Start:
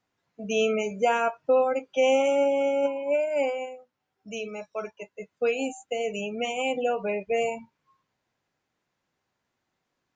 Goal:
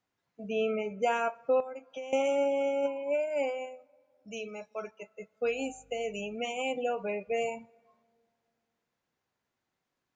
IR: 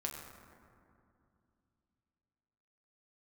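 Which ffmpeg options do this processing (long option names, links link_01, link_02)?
-filter_complex "[0:a]asplit=3[link_01][link_02][link_03];[link_01]afade=type=out:start_time=0.48:duration=0.02[link_04];[link_02]lowpass=2400,afade=type=in:start_time=0.48:duration=0.02,afade=type=out:start_time=1.01:duration=0.02[link_05];[link_03]afade=type=in:start_time=1.01:duration=0.02[link_06];[link_04][link_05][link_06]amix=inputs=3:normalize=0,asettb=1/sr,asplit=3[link_07][link_08][link_09];[link_07]atrim=end=1.604[link_10];[link_08]atrim=start=1.6:end=2.13,asetpts=PTS-STARTPTS,afade=type=in:duration=0.004:curve=qsin,afade=type=out:start_time=0.526:duration=0.004:curve=qsin,acompressor=threshold=-33dB:ratio=10[link_11];[link_09]atrim=start=2.126[link_12];[link_10][link_11]acrossfade=duration=0.004:curve1=hsin:curve2=qsin[link_13];[link_13][link_12]acrossfade=duration=0.004:curve1=qsin:curve2=hsin,asplit=2[link_14][link_15];[1:a]atrim=start_sample=2205,lowshelf=frequency=360:gain=-10[link_16];[link_15][link_16]afir=irnorm=-1:irlink=0,volume=-20dB[link_17];[link_14][link_17]amix=inputs=2:normalize=0,asettb=1/sr,asplit=3[link_18][link_19][link_20];[link_18]atrim=end=5.444[link_21];[link_19]atrim=start=5.44:end=6.35,asetpts=PTS-STARTPTS,afade=type=in:duration=0.004:curve=qsin,afade=type=out:start_time=0.906:duration=0.004:curve=qsin,aeval=exprs='val(0)+0.00141*(sin(2*PI*50*n/s)+sin(2*PI*2*50*n/s)/2+sin(2*PI*3*50*n/s)/3+sin(2*PI*4*50*n/s)/4+sin(2*PI*5*50*n/s)/5)':channel_layout=same[link_22];[link_20]atrim=start=6.346[link_23];[link_21][link_22]acrossfade=duration=0.004:curve1=hsin:curve2=qsin[link_24];[link_24][link_23]acrossfade=duration=0.004:curve1=qsin:curve2=hsin,volume=-5.5dB"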